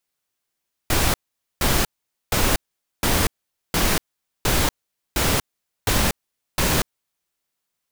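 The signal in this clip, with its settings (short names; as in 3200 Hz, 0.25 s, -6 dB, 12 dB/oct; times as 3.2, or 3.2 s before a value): noise bursts pink, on 0.24 s, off 0.47 s, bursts 9, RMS -19 dBFS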